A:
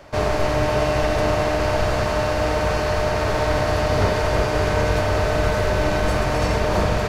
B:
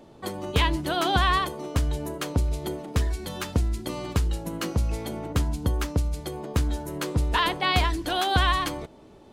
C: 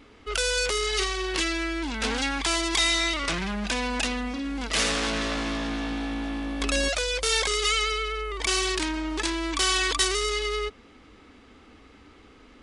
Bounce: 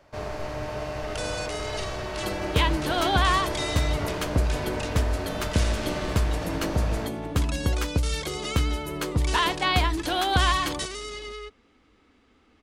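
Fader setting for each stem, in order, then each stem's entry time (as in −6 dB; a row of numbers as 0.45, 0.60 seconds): −12.5, 0.0, −9.5 decibels; 0.00, 2.00, 0.80 seconds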